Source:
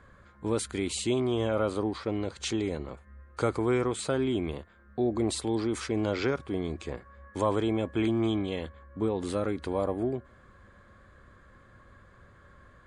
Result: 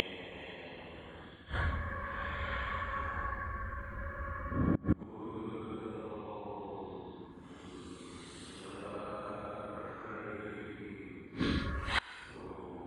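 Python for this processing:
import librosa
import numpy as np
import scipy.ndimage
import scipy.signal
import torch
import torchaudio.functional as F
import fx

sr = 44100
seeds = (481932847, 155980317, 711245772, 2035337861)

y = fx.band_shelf(x, sr, hz=1600.0, db=8.5, octaves=2.3)
y = fx.paulstretch(y, sr, seeds[0], factor=11.0, window_s=0.05, from_s=8.54)
y = fx.hpss(y, sr, part='percussive', gain_db=8)
y = fx.gate_flip(y, sr, shuts_db=-25.0, range_db=-27)
y = y * librosa.db_to_amplitude(8.0)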